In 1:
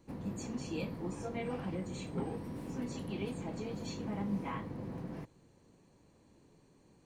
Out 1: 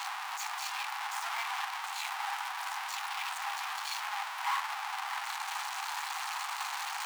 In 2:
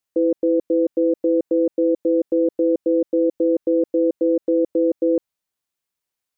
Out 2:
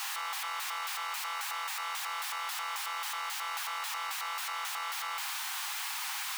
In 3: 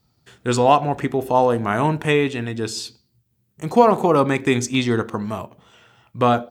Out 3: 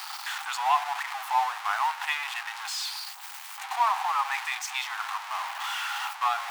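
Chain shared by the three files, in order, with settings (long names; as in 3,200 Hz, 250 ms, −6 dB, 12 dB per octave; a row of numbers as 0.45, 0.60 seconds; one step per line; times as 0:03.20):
converter with a step at zero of −16 dBFS
Chebyshev high-pass filter 790 Hz, order 6
high-shelf EQ 4,100 Hz −11 dB
level −5.5 dB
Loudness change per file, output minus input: +4.5, −14.5, −9.5 LU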